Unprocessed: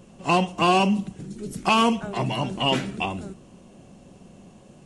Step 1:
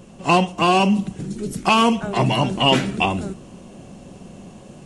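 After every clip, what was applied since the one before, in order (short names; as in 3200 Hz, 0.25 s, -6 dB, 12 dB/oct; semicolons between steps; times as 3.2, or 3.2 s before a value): vocal rider within 3 dB 0.5 s; gain +5 dB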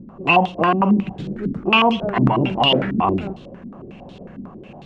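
limiter -10 dBFS, peak gain reduction 6.5 dB; stepped low-pass 11 Hz 260–3700 Hz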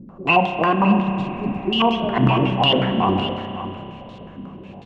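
echo 0.56 s -11.5 dB; spectral repair 1.07–1.78, 440–2700 Hz before; spring tank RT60 3 s, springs 31 ms, chirp 65 ms, DRR 6.5 dB; gain -1.5 dB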